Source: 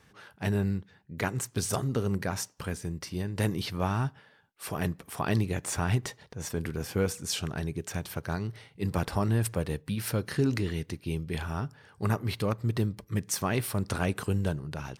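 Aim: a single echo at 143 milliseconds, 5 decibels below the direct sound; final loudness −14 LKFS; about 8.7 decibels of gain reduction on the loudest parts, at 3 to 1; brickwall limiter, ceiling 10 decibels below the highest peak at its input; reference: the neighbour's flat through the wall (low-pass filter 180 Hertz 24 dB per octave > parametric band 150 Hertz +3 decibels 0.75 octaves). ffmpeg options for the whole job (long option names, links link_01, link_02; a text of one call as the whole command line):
ffmpeg -i in.wav -af "acompressor=threshold=-34dB:ratio=3,alimiter=level_in=5.5dB:limit=-24dB:level=0:latency=1,volume=-5.5dB,lowpass=frequency=180:width=0.5412,lowpass=frequency=180:width=1.3066,equalizer=frequency=150:width_type=o:width=0.75:gain=3,aecho=1:1:143:0.562,volume=27dB" out.wav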